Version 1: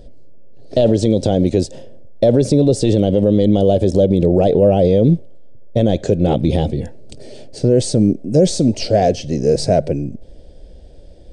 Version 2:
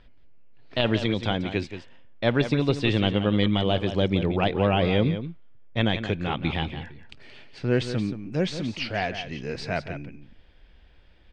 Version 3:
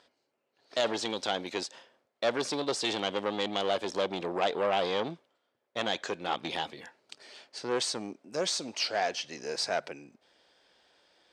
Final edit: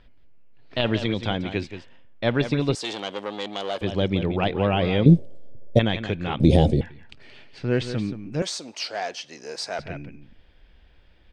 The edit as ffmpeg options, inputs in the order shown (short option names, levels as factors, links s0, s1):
-filter_complex "[2:a]asplit=2[s0][s1];[0:a]asplit=2[s2][s3];[1:a]asplit=5[s4][s5][s6][s7][s8];[s4]atrim=end=2.752[s9];[s0]atrim=start=2.748:end=3.812[s10];[s5]atrim=start=3.808:end=5.062[s11];[s2]atrim=start=5.058:end=5.792[s12];[s6]atrim=start=5.788:end=6.402[s13];[s3]atrim=start=6.398:end=6.812[s14];[s7]atrim=start=6.808:end=8.422[s15];[s1]atrim=start=8.418:end=9.792[s16];[s8]atrim=start=9.788[s17];[s9][s10]acrossfade=d=0.004:c1=hsin:c2=hsin[s18];[s18][s11]acrossfade=d=0.004:c1=hsin:c2=hsin[s19];[s19][s12]acrossfade=d=0.004:c1=hsin:c2=hsin[s20];[s20][s13]acrossfade=d=0.004:c1=hsin:c2=hsin[s21];[s21][s14]acrossfade=d=0.004:c1=hsin:c2=hsin[s22];[s22][s15]acrossfade=d=0.004:c1=hsin:c2=hsin[s23];[s23][s16]acrossfade=d=0.004:c1=hsin:c2=hsin[s24];[s24][s17]acrossfade=d=0.004:c1=hsin:c2=hsin"